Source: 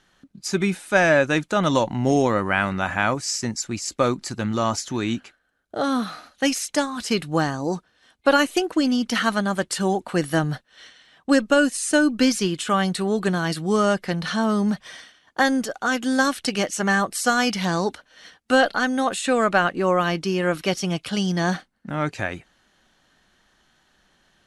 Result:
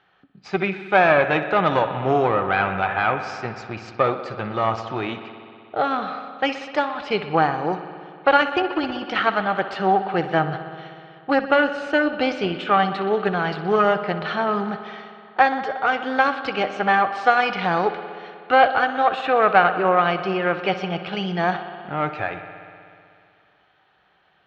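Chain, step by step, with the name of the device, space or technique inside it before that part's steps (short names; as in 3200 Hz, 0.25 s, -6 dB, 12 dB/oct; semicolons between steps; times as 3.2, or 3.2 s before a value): analogue delay pedal into a guitar amplifier (analogue delay 62 ms, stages 2048, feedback 84%, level -14 dB; tube stage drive 11 dB, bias 0.65; speaker cabinet 84–3600 Hz, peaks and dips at 240 Hz -10 dB, 430 Hz +5 dB, 770 Hz +10 dB, 1300 Hz +6 dB, 2400 Hz +5 dB); gain +1.5 dB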